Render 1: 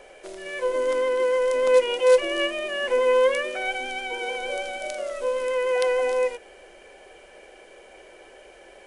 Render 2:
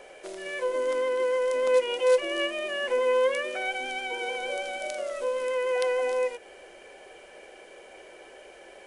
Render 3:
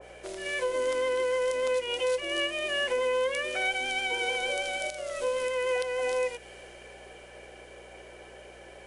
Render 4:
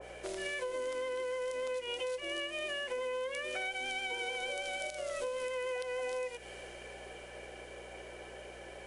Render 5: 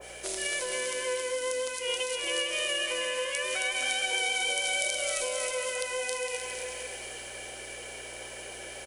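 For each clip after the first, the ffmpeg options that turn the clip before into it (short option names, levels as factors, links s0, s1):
-filter_complex "[0:a]lowshelf=f=69:g=-10.5,asplit=2[s0][s1];[s1]acompressor=threshold=0.0251:ratio=6,volume=0.891[s2];[s0][s2]amix=inputs=2:normalize=0,volume=0.531"
-af "alimiter=limit=0.0841:level=0:latency=1:release=341,aeval=exprs='val(0)+0.00141*(sin(2*PI*60*n/s)+sin(2*PI*2*60*n/s)/2+sin(2*PI*3*60*n/s)/3+sin(2*PI*4*60*n/s)/4+sin(2*PI*5*60*n/s)/5)':c=same,adynamicequalizer=threshold=0.00501:dfrequency=1900:dqfactor=0.7:tfrequency=1900:tqfactor=0.7:attack=5:release=100:ratio=0.375:range=3:mode=boostabove:tftype=highshelf"
-af "acompressor=threshold=0.0178:ratio=6"
-filter_complex "[0:a]crystalizer=i=5:c=0,asplit=2[s0][s1];[s1]aecho=0:1:270|459|591.3|683.9|748.7:0.631|0.398|0.251|0.158|0.1[s2];[s0][s2]amix=inputs=2:normalize=0"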